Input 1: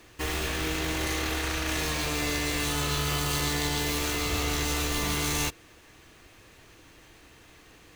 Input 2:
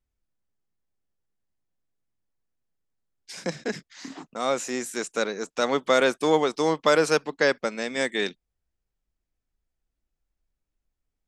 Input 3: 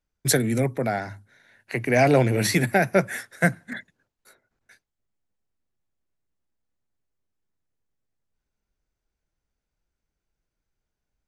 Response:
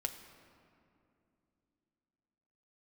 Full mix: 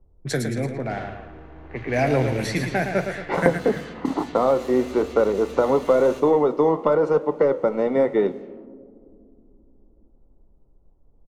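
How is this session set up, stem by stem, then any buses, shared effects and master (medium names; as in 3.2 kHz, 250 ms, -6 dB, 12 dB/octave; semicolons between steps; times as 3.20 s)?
-4.0 dB, 0.70 s, no send, echo send -8 dB, peak limiter -23.5 dBFS, peak gain reduction 8 dB
+0.5 dB, 0.00 s, send -5 dB, no echo send, waveshaping leveller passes 2; Savitzky-Golay filter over 65 samples; three bands compressed up and down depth 100%
+1.0 dB, 0.00 s, no send, echo send -7 dB, none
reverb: on, RT60 2.7 s, pre-delay 6 ms
echo: feedback delay 113 ms, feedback 50%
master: level-controlled noise filter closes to 650 Hz, open at -15 dBFS; treble shelf 6.2 kHz -8.5 dB; flange 0.97 Hz, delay 8.2 ms, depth 6.8 ms, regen -76%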